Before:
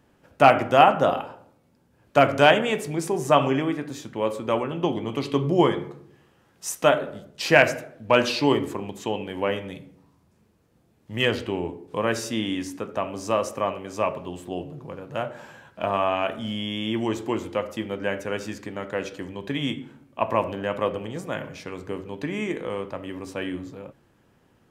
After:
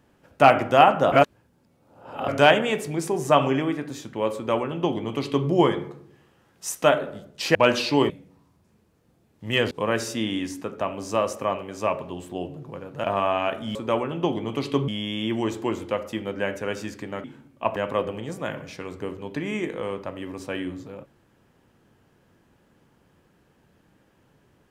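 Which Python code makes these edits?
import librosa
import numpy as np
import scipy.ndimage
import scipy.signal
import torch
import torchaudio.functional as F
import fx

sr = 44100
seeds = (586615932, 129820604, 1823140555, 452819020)

y = fx.edit(x, sr, fx.reverse_span(start_s=1.12, length_s=1.16),
    fx.duplicate(start_s=4.35, length_s=1.13, to_s=16.52),
    fx.cut(start_s=7.55, length_s=0.5),
    fx.cut(start_s=8.6, length_s=1.17),
    fx.cut(start_s=11.38, length_s=0.49),
    fx.cut(start_s=15.2, length_s=0.61),
    fx.cut(start_s=18.88, length_s=0.92),
    fx.cut(start_s=20.32, length_s=0.31), tone=tone)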